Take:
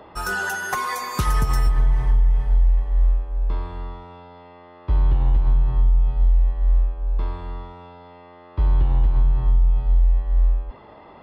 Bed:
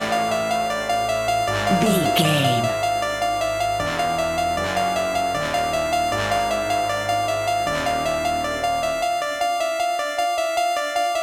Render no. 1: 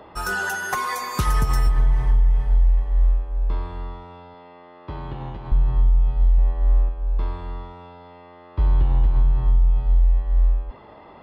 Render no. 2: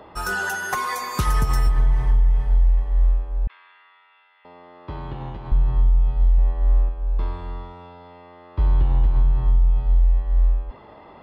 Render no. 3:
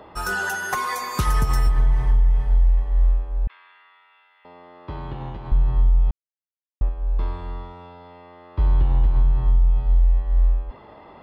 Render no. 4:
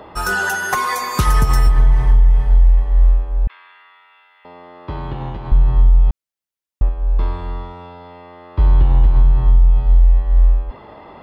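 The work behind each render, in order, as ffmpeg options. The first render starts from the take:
-filter_complex "[0:a]asettb=1/sr,asplit=3[a][b][c];[a]atrim=end=4.344[d];[b]atrim=start=4.34:end=5.52,asetpts=PTS-STARTPTS,afade=t=in:d=0.004:c=qsin,afade=t=out:st=1.176:d=0.004:c=qsin,highpass=140,lowpass=7.1k[e];[c]atrim=start=5.516[f];[d][e]acrossfade=d=0.004:c1=hsin:c2=qsin[g];[g][f]acrossfade=d=0.004:c1=qsin:c2=hsin,asettb=1/sr,asplit=3[h][i][j];[h]atrim=end=6.384[k];[i]atrim=start=6.38:end=6.89,asetpts=PTS-STARTPTS,afade=t=in:d=0.004:c=qsin,afade=t=out:st=0.506:d=0.004:c=qsin,equalizer=f=500:w=0.38:g=5.5[l];[j]atrim=start=6.886[m];[k][l]acrossfade=d=0.004:c1=hsin:c2=qsin[n];[n][m]acrossfade=d=0.004:c1=qsin:c2=hsin"
-filter_complex "[0:a]asettb=1/sr,asplit=3[a][b][c];[a]atrim=end=3.474[d];[b]atrim=start=3.47:end=4.45,asetpts=PTS-STARTPTS,afade=t=in:d=0.004:c=qsin,afade=t=out:st=0.976:d=0.004:c=qsin,asuperpass=centerf=2200:order=4:qfactor=1.4[e];[c]atrim=start=4.446[f];[d][e]acrossfade=d=0.004:c1=hsin:c2=qsin[g];[g][f]acrossfade=d=0.004:c1=qsin:c2=hsin"
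-filter_complex "[0:a]asplit=3[a][b][c];[a]atrim=end=6.11,asetpts=PTS-STARTPTS,afade=t=out:st=6.106:d=0.004:c=hsin[d];[b]atrim=start=6.11:end=6.81,asetpts=PTS-STARTPTS,volume=0[e];[c]atrim=start=6.81,asetpts=PTS-STARTPTS,afade=t=in:d=0.004:c=hsin[f];[d][e][f]concat=n=3:v=0:a=1"
-af "volume=6dB"

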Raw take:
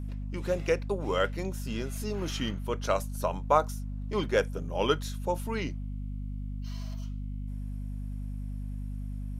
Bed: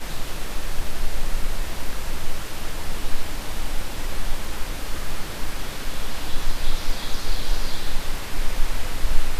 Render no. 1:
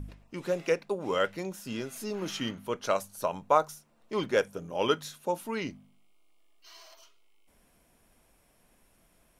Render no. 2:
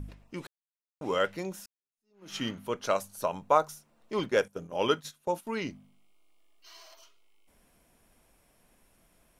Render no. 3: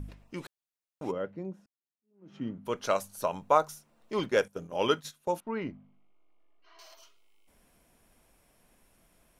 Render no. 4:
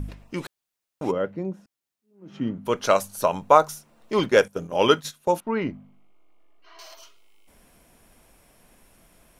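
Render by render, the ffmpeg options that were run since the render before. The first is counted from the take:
-af "bandreject=f=50:t=h:w=4,bandreject=f=100:t=h:w=4,bandreject=f=150:t=h:w=4,bandreject=f=200:t=h:w=4,bandreject=f=250:t=h:w=4"
-filter_complex "[0:a]asettb=1/sr,asplit=3[a][b][c];[a]atrim=end=4.194[d];[b]atrim=start=4.19:end=5.47,asetpts=PTS-STARTPTS,afade=t=in:d=0.004:c=qsin,afade=t=out:st=1.276:d=0.004:c=qsin,agate=range=-13dB:threshold=-43dB:ratio=16:release=100:detection=peak[e];[c]atrim=start=5.466[f];[d][e]acrossfade=d=0.004:c1=hsin:c2=qsin[g];[g][f]acrossfade=d=0.004:c1=qsin:c2=hsin,asplit=4[h][i][j][k];[h]atrim=end=0.47,asetpts=PTS-STARTPTS,afade=t=out:st=0.466:d=0.004:c=hsin[l];[i]atrim=start=0.47:end=1.01,asetpts=PTS-STARTPTS,volume=0[m];[j]atrim=start=1.01:end=1.66,asetpts=PTS-STARTPTS,afade=t=in:d=0.004:c=hsin,afade=t=out:st=0.646:d=0.004:c=hsin[n];[k]atrim=start=1.66,asetpts=PTS-STARTPTS,afade=t=in:d=0.7:c=exp[o];[l][m][n][o]concat=n=4:v=0:a=1"
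-filter_complex "[0:a]asplit=3[a][b][c];[a]afade=t=out:st=1.1:d=0.02[d];[b]bandpass=f=190:t=q:w=0.7,afade=t=in:st=1.1:d=0.02,afade=t=out:st=2.65:d=0.02[e];[c]afade=t=in:st=2.65:d=0.02[f];[d][e][f]amix=inputs=3:normalize=0,asettb=1/sr,asplit=3[g][h][i];[g]atrim=end=5.404[j];[h]atrim=start=5.4:end=6.79,asetpts=PTS-STARTPTS,afade=t=in:d=0.004:c=qsin,afade=t=out:st=1.386:d=0.004:c=qsin,lowpass=1.7k[k];[i]atrim=start=6.786[l];[j][k]acrossfade=d=0.004:c1=hsin:c2=qsin[m];[m][l]acrossfade=d=0.004:c1=qsin:c2=hsin"
-af "volume=8.5dB,alimiter=limit=-2dB:level=0:latency=1"

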